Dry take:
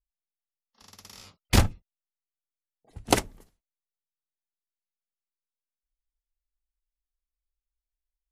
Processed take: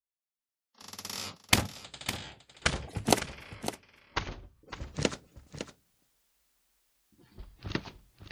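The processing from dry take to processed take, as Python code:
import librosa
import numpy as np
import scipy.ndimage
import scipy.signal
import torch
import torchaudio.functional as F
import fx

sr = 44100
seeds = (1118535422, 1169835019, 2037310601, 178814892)

p1 = fx.recorder_agc(x, sr, target_db=-9.5, rise_db_per_s=15.0, max_gain_db=30)
p2 = scipy.signal.sosfilt(scipy.signal.butter(2, 120.0, 'highpass', fs=sr, output='sos'), p1)
p3 = fx.echo_pitch(p2, sr, ms=367, semitones=-7, count=2, db_per_echo=-6.0)
p4 = p3 + fx.echo_single(p3, sr, ms=557, db=-11.0, dry=0)
y = p4 * 10.0 ** (-7.5 / 20.0)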